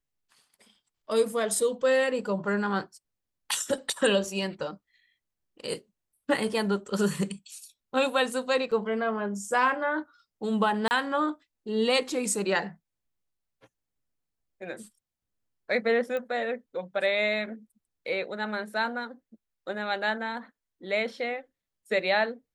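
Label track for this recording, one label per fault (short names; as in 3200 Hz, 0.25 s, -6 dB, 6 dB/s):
8.710000	8.720000	gap 5.8 ms
10.880000	10.910000	gap 29 ms
16.170000	16.170000	pop -21 dBFS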